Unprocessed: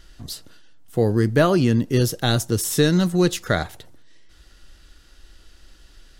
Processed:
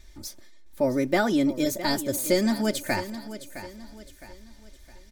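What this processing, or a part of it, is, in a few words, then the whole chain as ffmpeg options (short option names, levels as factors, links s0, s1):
nightcore: -af "aecho=1:1:4:0.83,asetrate=53361,aresample=44100,aecho=1:1:662|1324|1986|2648:0.224|0.0873|0.0341|0.0133,volume=0.473"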